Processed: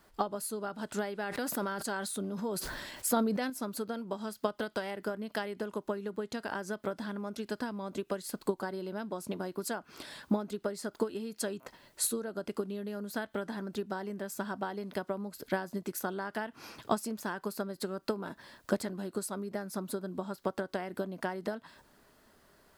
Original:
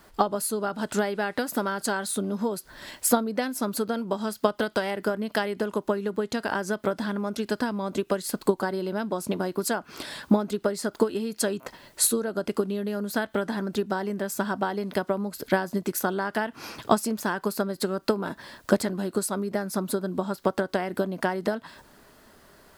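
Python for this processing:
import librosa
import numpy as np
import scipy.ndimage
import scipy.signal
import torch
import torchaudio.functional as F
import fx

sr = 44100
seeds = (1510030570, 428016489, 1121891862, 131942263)

y = fx.sustainer(x, sr, db_per_s=29.0, at=(1.23, 3.5))
y = y * librosa.db_to_amplitude(-9.0)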